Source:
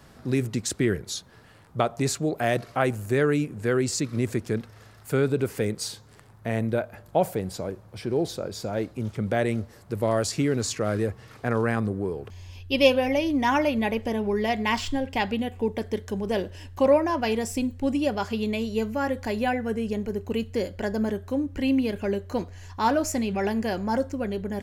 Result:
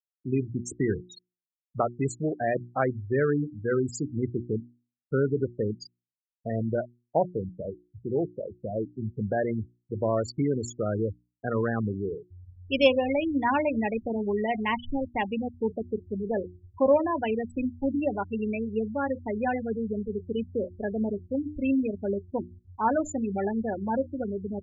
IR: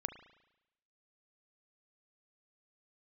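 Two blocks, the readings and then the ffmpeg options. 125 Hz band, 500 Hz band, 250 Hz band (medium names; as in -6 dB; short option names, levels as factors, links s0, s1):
-3.0 dB, -2.0 dB, -2.5 dB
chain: -af "afftfilt=real='re*gte(hypot(re,im),0.1)':imag='im*gte(hypot(re,im),0.1)':win_size=1024:overlap=0.75,aeval=exprs='0.501*(cos(1*acos(clip(val(0)/0.501,-1,1)))-cos(1*PI/2))+0.00562*(cos(3*acos(clip(val(0)/0.501,-1,1)))-cos(3*PI/2))':c=same,bandreject=f=60:t=h:w=6,bandreject=f=120:t=h:w=6,bandreject=f=180:t=h:w=6,bandreject=f=240:t=h:w=6,bandreject=f=300:t=h:w=6,bandreject=f=360:t=h:w=6,volume=0.841"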